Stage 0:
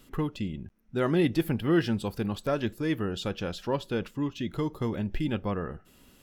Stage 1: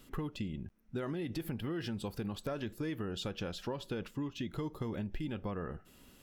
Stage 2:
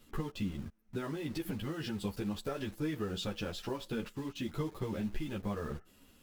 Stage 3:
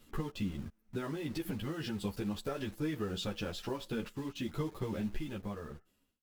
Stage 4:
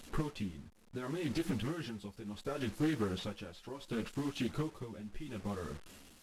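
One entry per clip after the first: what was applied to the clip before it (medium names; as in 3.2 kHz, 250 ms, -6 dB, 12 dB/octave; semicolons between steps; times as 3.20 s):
peak limiter -21.5 dBFS, peak gain reduction 7 dB; compression, threshold -32 dBFS, peak gain reduction 7 dB; trim -2 dB
in parallel at -4 dB: word length cut 8-bit, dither none; on the sum: three-phase chorus
fade out at the end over 1.15 s
one-bit delta coder 64 kbps, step -49.5 dBFS; tremolo 0.7 Hz, depth 79%; loudspeaker Doppler distortion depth 0.28 ms; trim +3 dB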